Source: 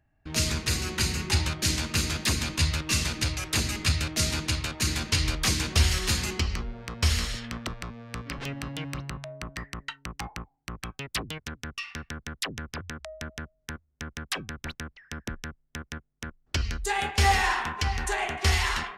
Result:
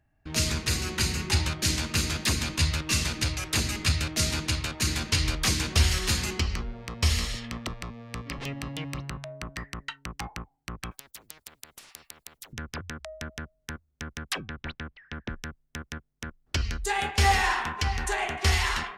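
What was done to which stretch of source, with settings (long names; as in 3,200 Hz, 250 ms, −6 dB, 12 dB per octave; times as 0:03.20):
0:06.76–0:09.04: notch filter 1,500 Hz, Q 6.1
0:10.91–0:12.53: every bin compressed towards the loudest bin 10 to 1
0:14.41–0:15.29: low-pass filter 4,100 Hz 24 dB per octave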